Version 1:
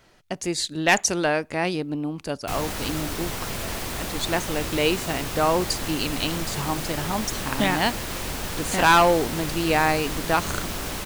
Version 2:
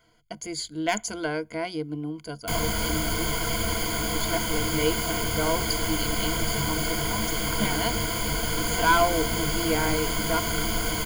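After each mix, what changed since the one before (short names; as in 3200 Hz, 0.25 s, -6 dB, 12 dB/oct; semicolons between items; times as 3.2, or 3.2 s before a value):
speech -9.5 dB; master: add ripple EQ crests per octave 1.8, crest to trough 17 dB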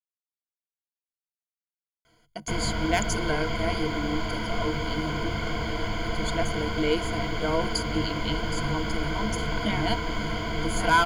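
speech: entry +2.05 s; background: add air absorption 200 m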